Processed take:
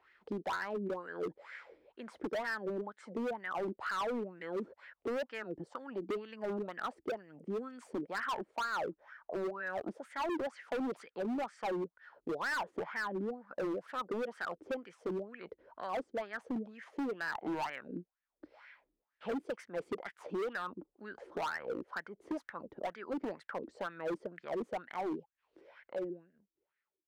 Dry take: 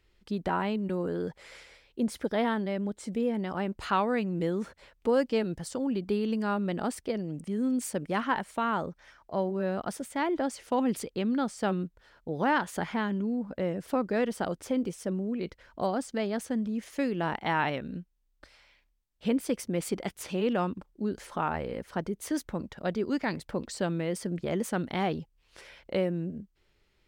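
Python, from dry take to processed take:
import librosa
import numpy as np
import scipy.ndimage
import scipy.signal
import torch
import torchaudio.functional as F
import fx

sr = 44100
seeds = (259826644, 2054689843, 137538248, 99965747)

y = fx.fade_out_tail(x, sr, length_s=3.11)
y = fx.wah_lfo(y, sr, hz=2.1, low_hz=310.0, high_hz=1800.0, q=5.8)
y = np.clip(y, -10.0 ** (-39.5 / 20.0), 10.0 ** (-39.5 / 20.0))
y = fx.band_squash(y, sr, depth_pct=40)
y = y * librosa.db_to_amplitude(7.0)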